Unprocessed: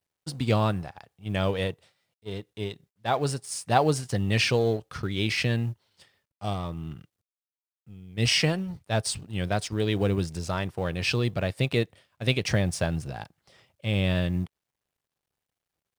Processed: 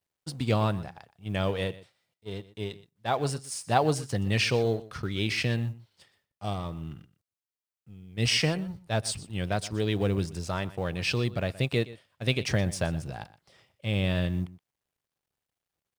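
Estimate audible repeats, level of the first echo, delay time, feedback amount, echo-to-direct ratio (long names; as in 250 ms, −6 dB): 1, −18.0 dB, 122 ms, repeats not evenly spaced, −18.0 dB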